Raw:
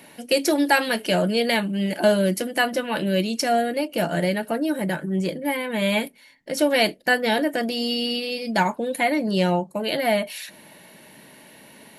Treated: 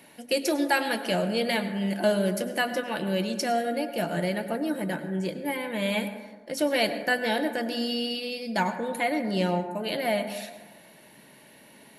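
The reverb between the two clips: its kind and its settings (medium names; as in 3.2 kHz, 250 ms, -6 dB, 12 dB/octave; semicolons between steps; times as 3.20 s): plate-style reverb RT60 1.4 s, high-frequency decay 0.3×, pre-delay 85 ms, DRR 9.5 dB; trim -5.5 dB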